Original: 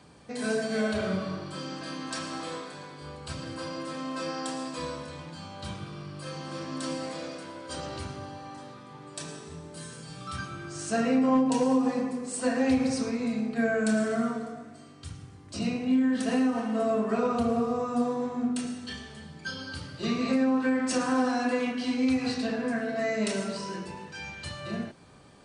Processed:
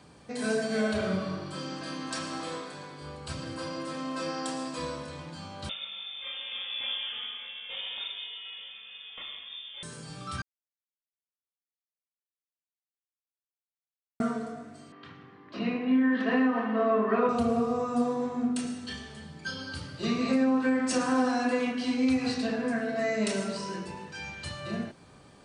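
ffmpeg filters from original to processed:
-filter_complex "[0:a]asettb=1/sr,asplit=3[a][b][c];[a]atrim=end=5.694[d];[b]atrim=start=5.69:end=9.83,asetpts=PTS-STARTPTS,afade=t=in:d=0.004:c=qsin,afade=t=out:st=4.136:d=0.004:c=qsin,lowpass=f=3.1k:t=q:w=0.5098,lowpass=f=3.1k:t=q:w=0.6013,lowpass=f=3.1k:t=q:w=0.9,lowpass=f=3.1k:t=q:w=2.563,afreqshift=-3700[e];[c]atrim=start=9.826[f];[d][e]acrossfade=d=0.004:c1=hsin:c2=qsin[g];[g][f]acrossfade=d=0.004:c1=qsin:c2=hsin,asettb=1/sr,asplit=3[h][i][j];[h]atrim=end=14.924[k];[i]atrim=start=14.92:end=17.29,asetpts=PTS-STARTPTS,afade=t=in:d=0.004:c=qsin,afade=t=out:st=2.366:d=0.004:c=qsin,highpass=f=160:w=0.5412,highpass=f=160:w=1.3066,equalizer=f=160:t=q:w=4:g=-5,equalizer=f=400:t=q:w=4:g=4,equalizer=f=1.1k:t=q:w=4:g=8,equalizer=f=1.8k:t=q:w=4:g=8,lowpass=f=3.5k:w=0.5412,lowpass=f=3.5k:w=1.3066[l];[j]atrim=start=17.286[m];[k][l]acrossfade=d=0.004:c1=hsin:c2=qsin[n];[n][m]acrossfade=d=0.004:c1=qsin:c2=hsin,asplit=3[o][p][q];[o]atrim=end=10.42,asetpts=PTS-STARTPTS,afade=t=out:st=10.416:d=0.004:c=hsin[r];[p]atrim=start=10.42:end=14.2,asetpts=PTS-STARTPTS,volume=0[s];[q]atrim=start=14.2,asetpts=PTS-STARTPTS,afade=t=in:d=0.004:c=hsin[t];[r][s][t]concat=n=3:v=0:a=1"

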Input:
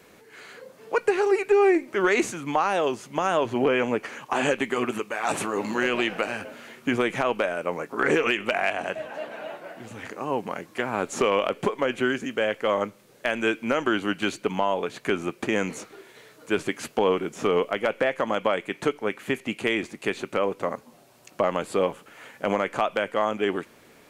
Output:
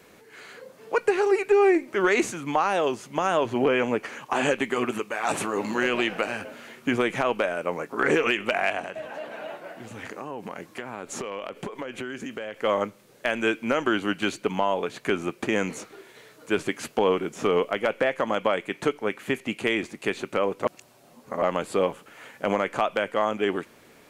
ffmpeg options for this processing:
-filter_complex "[0:a]asettb=1/sr,asplit=3[a][b][c];[a]atrim=end=8.794[d];[b]atrim=start=8.79:end=12.61,asetpts=PTS-STARTPTS,afade=t=in:d=0.004:c=qsin,afade=t=out:st=3.816:d=0.004:c=qsin,acompressor=threshold=-30dB:ratio=6:attack=3.2:release=140:knee=1:detection=peak[e];[c]atrim=start=12.606[f];[d][e]acrossfade=d=0.004:c1=hsin:c2=qsin[g];[g][f]acrossfade=d=0.004:c1=qsin:c2=hsin,asplit=3[h][i][j];[h]atrim=end=20.652[k];[i]atrim=start=20.648:end=21.422,asetpts=PTS-STARTPTS,areverse[l];[j]atrim=start=21.418[m];[k][l]acrossfade=d=0.004:c1=hsin:c2=hsin[n];[n][m]acrossfade=d=0.004:c1=hsin:c2=hsin"

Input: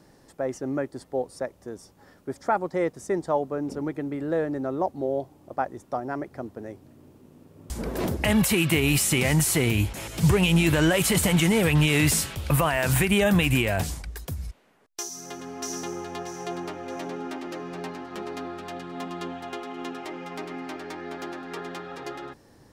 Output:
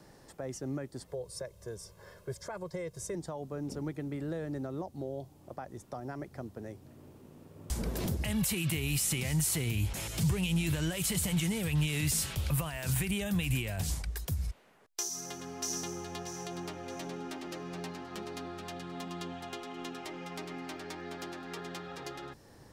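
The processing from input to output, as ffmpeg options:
-filter_complex "[0:a]asettb=1/sr,asplit=3[a][b][c];[a]atrim=end=1.084[d];[b]atrim=start=1.08:end=3.15,asetpts=PTS-STARTPTS,afade=t=in:d=0.004:c=qsin,afade=t=out:st=2.066:d=0.004:c=qsin,aecho=1:1:1.9:0.89,atrim=end_sample=91287[e];[c]atrim=start=3.146[f];[d][e]acrossfade=d=0.004:c1=hsin:c2=qsin[g];[g][f]acrossfade=d=0.004:c1=qsin:c2=hsin,equalizer=f=270:w=2:g=-4,alimiter=limit=-21dB:level=0:latency=1:release=95,acrossover=split=250|3000[h][i][j];[i]acompressor=threshold=-48dB:ratio=2[k];[h][k][j]amix=inputs=3:normalize=0"

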